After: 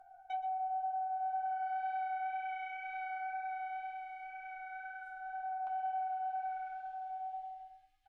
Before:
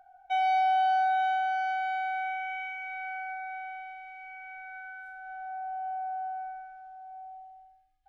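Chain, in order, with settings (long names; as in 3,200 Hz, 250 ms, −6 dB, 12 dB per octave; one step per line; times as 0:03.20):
treble cut that deepens with the level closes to 520 Hz, closed at −22.5 dBFS
parametric band 2,900 Hz −4 dB 2.1 octaves, from 0:05.67 +10 dB
downward compressor 2.5 to 1, threshold −39 dBFS, peak gain reduction 8.5 dB
flanger 2 Hz, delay 7.5 ms, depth 3.3 ms, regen −47%
double-tracking delay 13 ms −8 dB
single-tap delay 122 ms −14 dB
level +2.5 dB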